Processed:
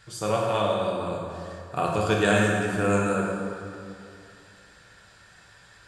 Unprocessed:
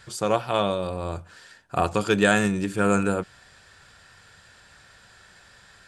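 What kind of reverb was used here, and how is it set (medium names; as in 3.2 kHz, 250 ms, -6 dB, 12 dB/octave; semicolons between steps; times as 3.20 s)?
plate-style reverb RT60 2.5 s, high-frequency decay 0.6×, DRR -2.5 dB; trim -5 dB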